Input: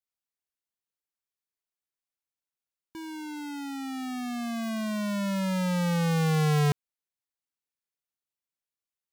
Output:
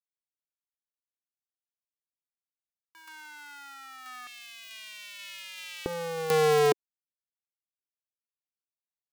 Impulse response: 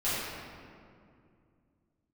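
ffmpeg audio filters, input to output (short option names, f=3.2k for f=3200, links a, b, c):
-af "acrusher=bits=5:dc=4:mix=0:aa=0.000001,asetnsamples=n=441:p=0,asendcmd='4.27 highpass f 2600;5.86 highpass f 400',highpass=f=1.3k:t=q:w=2.5"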